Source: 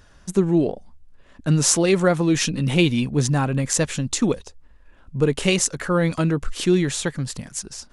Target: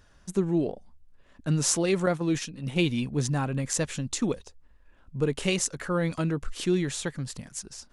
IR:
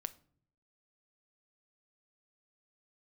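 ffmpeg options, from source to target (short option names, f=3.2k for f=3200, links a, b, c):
-filter_complex "[0:a]asettb=1/sr,asplit=3[a][b][c];[a]atrim=end=2.064[d];[b]atrim=start=2.06:end=2.79,asetpts=PTS-STARTPTS,afade=t=in:d=0.004:c=qsin,afade=t=out:st=0.726:d=0.004:c=qsin,agate=range=-9dB:threshold=-20dB:ratio=16:detection=peak[e];[c]atrim=start=2.786[f];[d][e]acrossfade=d=0.004:c1=hsin:c2=qsin[g];[g][f]acrossfade=d=0.004:c1=qsin:c2=hsin,volume=-7dB"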